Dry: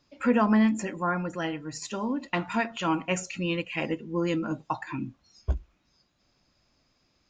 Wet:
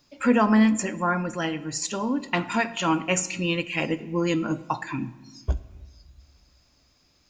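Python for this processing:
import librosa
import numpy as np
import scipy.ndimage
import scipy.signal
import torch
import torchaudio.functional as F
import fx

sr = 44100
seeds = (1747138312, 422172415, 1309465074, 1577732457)

y = fx.high_shelf(x, sr, hz=6400.0, db=12.0)
y = fx.room_shoebox(y, sr, seeds[0], volume_m3=970.0, walls='mixed', distance_m=0.31)
y = y * 10.0 ** (3.0 / 20.0)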